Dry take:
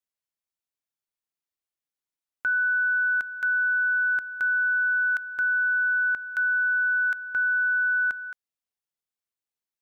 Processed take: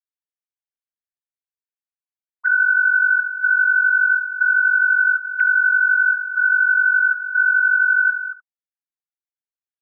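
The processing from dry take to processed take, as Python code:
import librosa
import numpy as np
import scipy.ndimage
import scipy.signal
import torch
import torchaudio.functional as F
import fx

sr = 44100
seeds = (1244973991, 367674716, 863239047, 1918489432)

y = fx.sine_speech(x, sr)
y = fx.peak_eq(y, sr, hz=1700.0, db=9.5, octaves=0.77)
y = y + 10.0 ** (-16.0 / 20.0) * np.pad(y, (int(72 * sr / 1000.0), 0))[:len(y)]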